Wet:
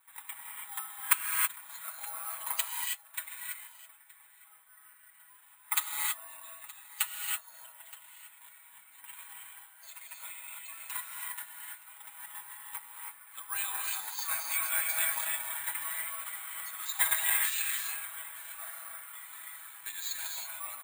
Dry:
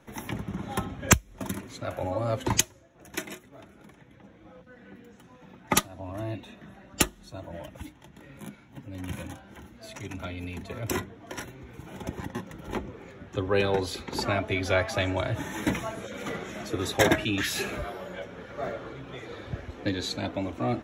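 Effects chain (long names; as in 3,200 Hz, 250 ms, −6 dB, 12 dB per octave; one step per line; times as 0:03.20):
elliptic band-pass filter 940–4,400 Hz, stop band 40 dB
comb filter 6.2 ms, depth 82%
on a send: single-tap delay 921 ms −19.5 dB
on the sum: reverb whose tail is shaped and stops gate 350 ms rising, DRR 0 dB
bad sample-rate conversion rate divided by 4×, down filtered, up zero stuff
level −9.5 dB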